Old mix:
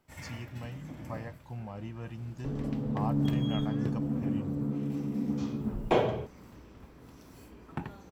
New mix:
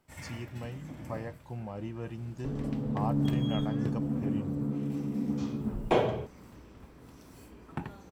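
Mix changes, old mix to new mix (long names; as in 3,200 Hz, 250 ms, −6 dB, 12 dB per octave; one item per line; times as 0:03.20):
speech: add parametric band 400 Hz +7.5 dB 1 octave
master: add parametric band 8,800 Hz +6 dB 0.25 octaves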